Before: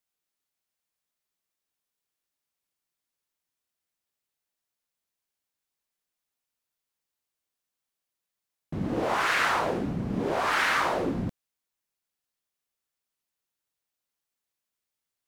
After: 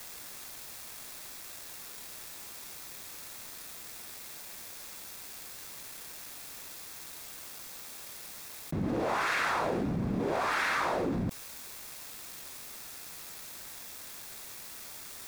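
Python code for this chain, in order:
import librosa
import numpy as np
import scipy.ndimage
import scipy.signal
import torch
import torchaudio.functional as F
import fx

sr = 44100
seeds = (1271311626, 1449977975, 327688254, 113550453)

y = fx.law_mismatch(x, sr, coded='mu')
y = fx.notch(y, sr, hz=3000.0, q=12.0)
y = fx.env_flatten(y, sr, amount_pct=70)
y = y * librosa.db_to_amplitude(-6.5)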